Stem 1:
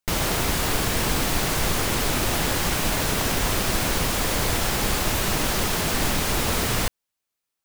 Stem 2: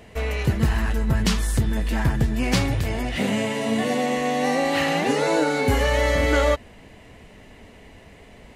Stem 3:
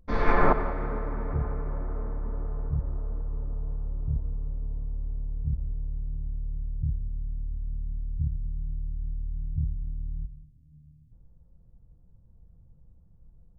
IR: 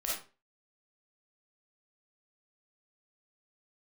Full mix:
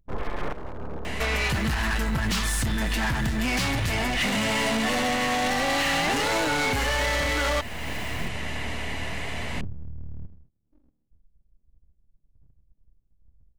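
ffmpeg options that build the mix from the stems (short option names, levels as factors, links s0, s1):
-filter_complex "[0:a]volume=26.6,asoftclip=hard,volume=0.0376,adelay=1400,volume=0.188[s0];[1:a]lowshelf=f=170:g=8,asplit=2[s1][s2];[s2]highpass=f=720:p=1,volume=20,asoftclip=type=tanh:threshold=0.376[s3];[s1][s3]amix=inputs=2:normalize=0,lowpass=f=7400:p=1,volume=0.501,equalizer=f=460:t=o:w=0.99:g=-6.5,adelay=1050,volume=0.891[s4];[2:a]afwtdn=0.0224,equalizer=f=1300:t=o:w=0.58:g=-4,aeval=exprs='abs(val(0))':c=same,volume=0.841[s5];[s0][s4][s5]amix=inputs=3:normalize=0,alimiter=limit=0.126:level=0:latency=1:release=328"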